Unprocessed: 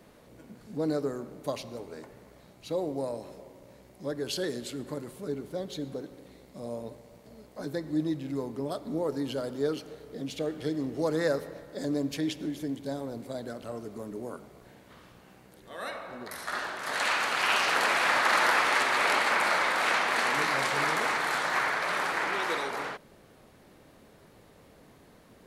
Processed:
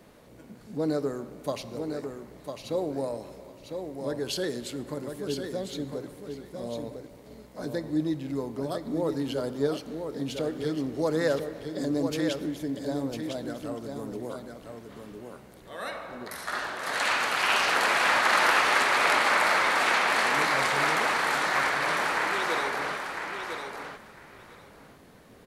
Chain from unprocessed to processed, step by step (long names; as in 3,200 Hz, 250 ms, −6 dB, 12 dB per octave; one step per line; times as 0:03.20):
repeating echo 1,002 ms, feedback 15%, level −6.5 dB
level +1.5 dB